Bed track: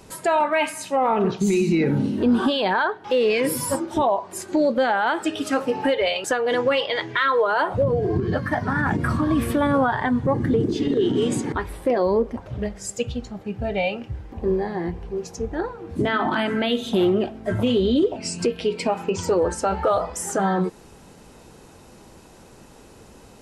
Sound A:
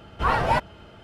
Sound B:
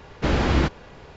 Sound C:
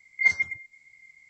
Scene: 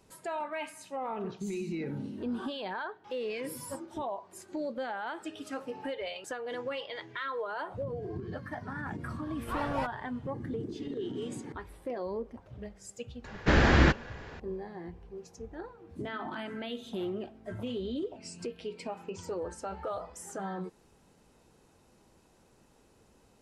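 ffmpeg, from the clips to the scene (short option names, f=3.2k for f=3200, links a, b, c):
-filter_complex "[0:a]volume=-16dB[a];[2:a]equalizer=f=1.7k:w=3.5:g=8.5[b];[1:a]atrim=end=1.03,asetpts=PTS-STARTPTS,volume=-13.5dB,afade=t=in:d=0.004:c=hsin,afade=t=out:st=1.026:d=0.004:c=hsin,adelay=9270[c];[b]atrim=end=1.16,asetpts=PTS-STARTPTS,volume=-2dB,afade=t=in:d=0.004:c=hsin,afade=t=out:st=1.156:d=0.004:c=hsin,adelay=13240[d];[a][c][d]amix=inputs=3:normalize=0"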